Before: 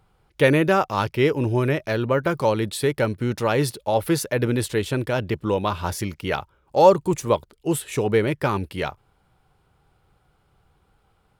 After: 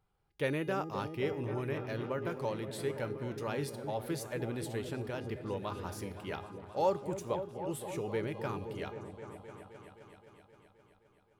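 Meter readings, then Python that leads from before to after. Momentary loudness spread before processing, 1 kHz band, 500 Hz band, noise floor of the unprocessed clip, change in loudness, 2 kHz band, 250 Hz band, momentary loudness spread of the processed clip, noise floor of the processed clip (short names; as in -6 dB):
10 LU, -15.0 dB, -14.5 dB, -65 dBFS, -15.0 dB, -15.5 dB, -14.5 dB, 13 LU, -69 dBFS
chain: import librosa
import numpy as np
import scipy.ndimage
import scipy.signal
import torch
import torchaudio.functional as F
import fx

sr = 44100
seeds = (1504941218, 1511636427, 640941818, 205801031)

y = fx.comb_fb(x, sr, f0_hz=410.0, decay_s=0.67, harmonics='all', damping=0.0, mix_pct=70)
y = fx.echo_opening(y, sr, ms=261, hz=400, octaves=1, feedback_pct=70, wet_db=-6)
y = y * librosa.db_to_amplitude(-6.0)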